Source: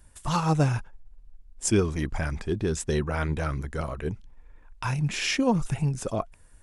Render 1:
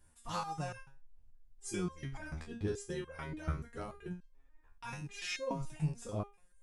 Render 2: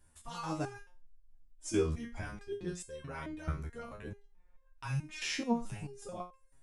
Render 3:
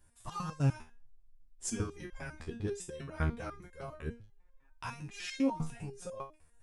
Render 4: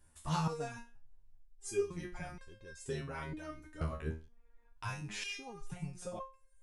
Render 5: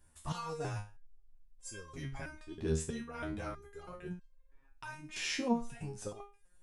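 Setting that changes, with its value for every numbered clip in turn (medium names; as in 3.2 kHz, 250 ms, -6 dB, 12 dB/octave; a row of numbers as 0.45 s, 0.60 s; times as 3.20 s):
resonator arpeggio, rate: 6.9 Hz, 4.6 Hz, 10 Hz, 2.1 Hz, 3.1 Hz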